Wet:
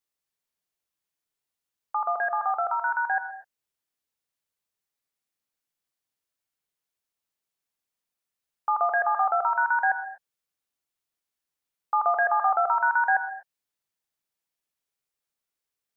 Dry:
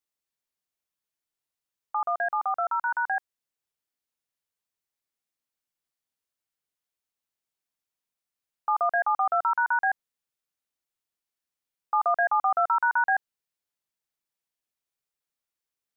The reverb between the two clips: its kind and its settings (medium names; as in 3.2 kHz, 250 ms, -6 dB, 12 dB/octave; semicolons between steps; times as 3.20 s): gated-style reverb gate 270 ms flat, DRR 9.5 dB; trim +1 dB